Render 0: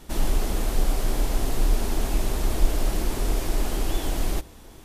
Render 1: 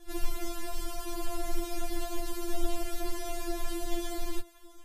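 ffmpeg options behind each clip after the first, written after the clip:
ffmpeg -i in.wav -af "afftfilt=real='re*4*eq(mod(b,16),0)':imag='im*4*eq(mod(b,16),0)':win_size=2048:overlap=0.75,volume=-4.5dB" out.wav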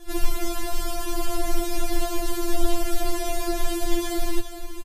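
ffmpeg -i in.wav -af "aecho=1:1:412:0.316,volume=8.5dB" out.wav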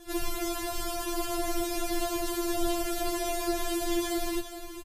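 ffmpeg -i in.wav -af "highpass=frequency=49:poles=1,volume=-2dB" out.wav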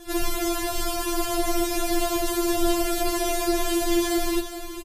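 ffmpeg -i in.wav -filter_complex "[0:a]asplit=2[link_01][link_02];[link_02]adelay=50,volume=-12dB[link_03];[link_01][link_03]amix=inputs=2:normalize=0,volume=6dB" out.wav

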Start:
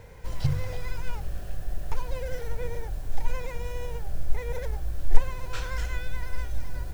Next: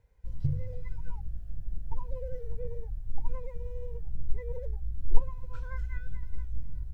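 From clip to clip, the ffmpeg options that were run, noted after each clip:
ffmpeg -i in.wav -af "afftdn=noise_reduction=22:noise_floor=-27,volume=-3.5dB" out.wav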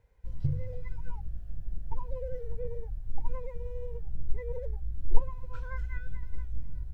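ffmpeg -i in.wav -af "bass=frequency=250:gain=-3,treble=frequency=4000:gain=-4,volume=2.5dB" out.wav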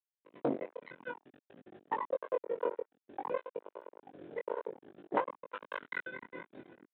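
ffmpeg -i in.wav -af "aresample=8000,acrusher=bits=3:mix=0:aa=0.5,aresample=44100,flanger=delay=19:depth=4.4:speed=0.56,highpass=frequency=320:width=0.5412,highpass=frequency=320:width=1.3066,volume=11dB" out.wav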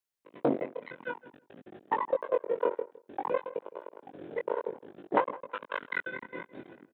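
ffmpeg -i in.wav -filter_complex "[0:a]asplit=2[link_01][link_02];[link_02]adelay=162,lowpass=frequency=2000:poles=1,volume=-17.5dB,asplit=2[link_03][link_04];[link_04]adelay=162,lowpass=frequency=2000:poles=1,volume=0.16[link_05];[link_01][link_03][link_05]amix=inputs=3:normalize=0,volume=5.5dB" out.wav

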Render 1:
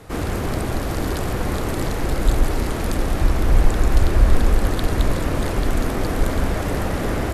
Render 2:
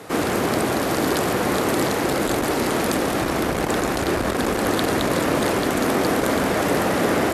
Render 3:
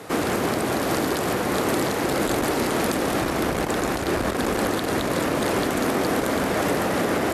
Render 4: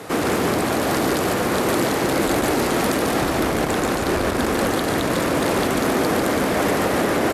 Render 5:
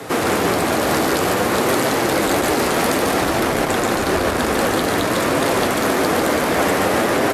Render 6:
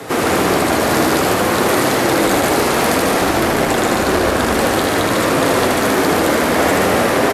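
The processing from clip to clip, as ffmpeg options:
ffmpeg -i in.wav -af "acontrast=62,highpass=210" out.wav
ffmpeg -i in.wav -af "alimiter=limit=-12.5dB:level=0:latency=1:release=249" out.wav
ffmpeg -i in.wav -filter_complex "[0:a]asplit=2[link_01][link_02];[link_02]asoftclip=type=tanh:threshold=-26dB,volume=-5.5dB[link_03];[link_01][link_03]amix=inputs=2:normalize=0,aecho=1:1:146:0.531" out.wav
ffmpeg -i in.wav -filter_complex "[0:a]acrossover=split=410|520|4800[link_01][link_02][link_03][link_04];[link_01]alimiter=limit=-21dB:level=0:latency=1:release=162[link_05];[link_05][link_02][link_03][link_04]amix=inputs=4:normalize=0,flanger=delay=7.2:depth=6.2:regen=-45:speed=0.55:shape=triangular,volume=7.5dB" out.wav
ffmpeg -i in.wav -af "aecho=1:1:79:0.668,volume=1.5dB" out.wav

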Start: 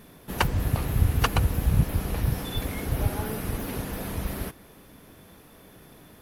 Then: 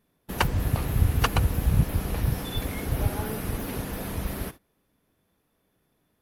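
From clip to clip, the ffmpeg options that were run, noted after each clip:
ffmpeg -i in.wav -af "agate=range=-21dB:threshold=-40dB:ratio=16:detection=peak" out.wav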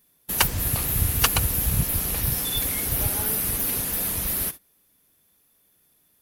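ffmpeg -i in.wav -af "crystalizer=i=6:c=0,volume=-3dB" out.wav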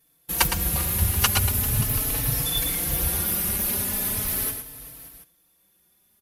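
ffmpeg -i in.wav -filter_complex "[0:a]asplit=2[link_01][link_02];[link_02]aecho=0:1:112|393|579|730:0.422|0.112|0.119|0.1[link_03];[link_01][link_03]amix=inputs=2:normalize=0,aresample=32000,aresample=44100,asplit=2[link_04][link_05];[link_05]adelay=4,afreqshift=0.4[link_06];[link_04][link_06]amix=inputs=2:normalize=1,volume=2.5dB" out.wav

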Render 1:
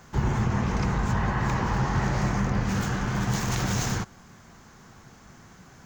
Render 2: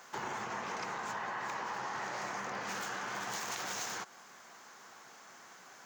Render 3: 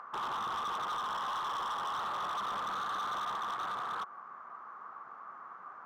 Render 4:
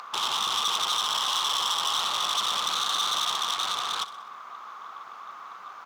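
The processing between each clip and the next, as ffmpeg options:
ffmpeg -i in.wav -af "highpass=560,acompressor=threshold=-36dB:ratio=6" out.wav
ffmpeg -i in.wav -af "lowpass=frequency=1200:width_type=q:width=8.5,asoftclip=type=hard:threshold=-31dB,acompressor=mode=upward:threshold=-45dB:ratio=2.5,volume=-2.5dB" out.wav
ffmpeg -i in.wav -filter_complex "[0:a]asplit=2[link_01][link_02];[link_02]highpass=frequency=720:poles=1,volume=4dB,asoftclip=type=tanh:threshold=-33dB[link_03];[link_01][link_03]amix=inputs=2:normalize=0,lowpass=frequency=4500:poles=1,volume=-6dB,aexciter=amount=10.9:drive=2.4:freq=2500,aecho=1:1:63|126|189|252|315:0.158|0.084|0.0445|0.0236|0.0125,volume=5.5dB" out.wav

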